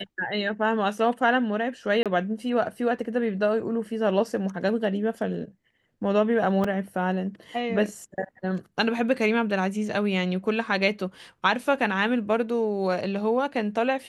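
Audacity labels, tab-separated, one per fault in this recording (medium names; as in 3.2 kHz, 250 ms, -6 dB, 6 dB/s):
2.030000	2.060000	dropout 27 ms
6.640000	6.640000	dropout 3.9 ms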